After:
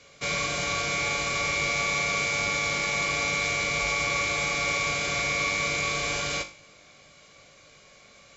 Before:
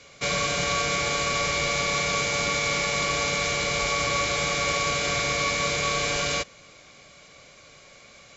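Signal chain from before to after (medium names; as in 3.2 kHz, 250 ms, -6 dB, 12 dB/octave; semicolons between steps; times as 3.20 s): feedback comb 50 Hz, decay 0.4 s, harmonics all, mix 70%; trim +2 dB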